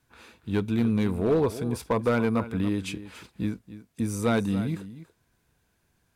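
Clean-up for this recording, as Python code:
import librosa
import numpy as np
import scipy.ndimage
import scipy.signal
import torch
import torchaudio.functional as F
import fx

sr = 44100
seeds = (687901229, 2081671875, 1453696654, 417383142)

y = fx.fix_declip(x, sr, threshold_db=-17.0)
y = fx.fix_echo_inverse(y, sr, delay_ms=283, level_db=-14.5)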